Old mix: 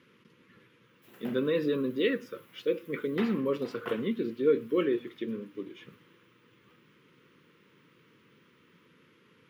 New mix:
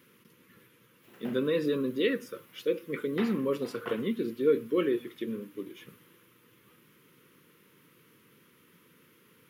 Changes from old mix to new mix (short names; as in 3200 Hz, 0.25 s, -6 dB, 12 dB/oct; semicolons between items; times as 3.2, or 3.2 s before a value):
speech: remove LPF 4100 Hz 12 dB/oct; master: add high shelf 6700 Hz -4.5 dB